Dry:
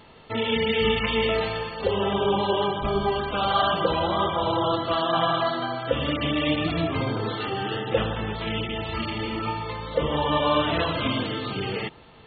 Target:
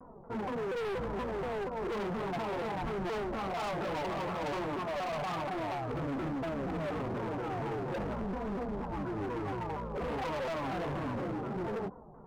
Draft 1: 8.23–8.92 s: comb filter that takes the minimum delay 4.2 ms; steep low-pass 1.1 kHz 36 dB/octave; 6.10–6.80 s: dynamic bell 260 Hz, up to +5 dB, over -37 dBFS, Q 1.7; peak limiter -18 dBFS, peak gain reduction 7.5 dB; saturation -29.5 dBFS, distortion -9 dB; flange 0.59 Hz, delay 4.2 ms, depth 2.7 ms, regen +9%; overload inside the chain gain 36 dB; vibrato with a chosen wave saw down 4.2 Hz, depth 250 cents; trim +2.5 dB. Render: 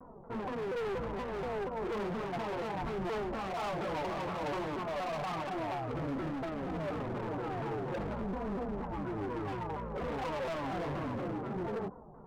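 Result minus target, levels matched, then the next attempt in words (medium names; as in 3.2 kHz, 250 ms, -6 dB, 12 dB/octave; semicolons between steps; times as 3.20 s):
saturation: distortion +15 dB
8.23–8.92 s: comb filter that takes the minimum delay 4.2 ms; steep low-pass 1.1 kHz 36 dB/octave; 6.10–6.80 s: dynamic bell 260 Hz, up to +5 dB, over -37 dBFS, Q 1.7; peak limiter -18 dBFS, peak gain reduction 7.5 dB; saturation -17.5 dBFS, distortion -24 dB; flange 0.59 Hz, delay 4.2 ms, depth 2.7 ms, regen +9%; overload inside the chain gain 36 dB; vibrato with a chosen wave saw down 4.2 Hz, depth 250 cents; trim +2.5 dB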